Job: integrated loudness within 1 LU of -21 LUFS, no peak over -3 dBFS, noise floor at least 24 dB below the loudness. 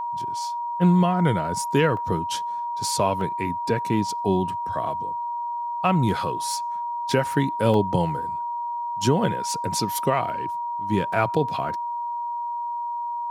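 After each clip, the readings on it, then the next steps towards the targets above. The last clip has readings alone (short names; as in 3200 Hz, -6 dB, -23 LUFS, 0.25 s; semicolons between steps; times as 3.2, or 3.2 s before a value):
dropouts 5; longest dropout 1.5 ms; steady tone 950 Hz; tone level -26 dBFS; loudness -24.5 LUFS; peak -8.0 dBFS; loudness target -21.0 LUFS
-> interpolate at 1.97/3.21/7.74/11.13/11.69, 1.5 ms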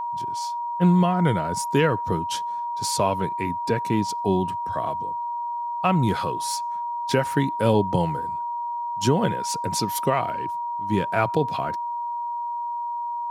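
dropouts 0; steady tone 950 Hz; tone level -26 dBFS
-> notch 950 Hz, Q 30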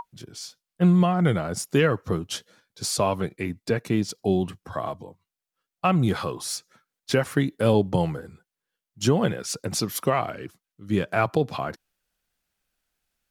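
steady tone none; loudness -25.0 LUFS; peak -9.0 dBFS; loudness target -21.0 LUFS
-> gain +4 dB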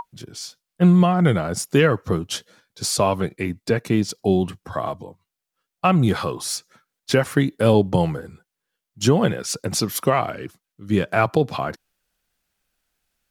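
loudness -21.0 LUFS; peak -5.0 dBFS; noise floor -84 dBFS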